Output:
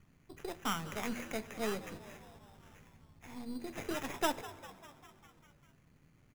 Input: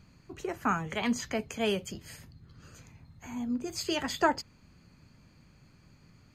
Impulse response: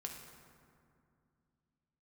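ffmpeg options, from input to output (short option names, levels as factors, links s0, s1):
-filter_complex "[0:a]aeval=exprs='if(lt(val(0),0),0.447*val(0),val(0))':c=same,bandreject=f=60:t=h:w=6,bandreject=f=120:t=h:w=6,bandreject=f=180:t=h:w=6,bandreject=f=240:t=h:w=6,asplit=8[s0][s1][s2][s3][s4][s5][s6][s7];[s1]adelay=200,afreqshift=95,volume=0.15[s8];[s2]adelay=400,afreqshift=190,volume=0.0955[s9];[s3]adelay=600,afreqshift=285,volume=0.061[s10];[s4]adelay=800,afreqshift=380,volume=0.0394[s11];[s5]adelay=1000,afreqshift=475,volume=0.0251[s12];[s6]adelay=1200,afreqshift=570,volume=0.016[s13];[s7]adelay=1400,afreqshift=665,volume=0.0102[s14];[s0][s8][s9][s10][s11][s12][s13][s14]amix=inputs=8:normalize=0,acrusher=samples=10:mix=1:aa=0.000001,asplit=2[s15][s16];[1:a]atrim=start_sample=2205[s17];[s16][s17]afir=irnorm=-1:irlink=0,volume=0.316[s18];[s15][s18]amix=inputs=2:normalize=0,volume=0.501"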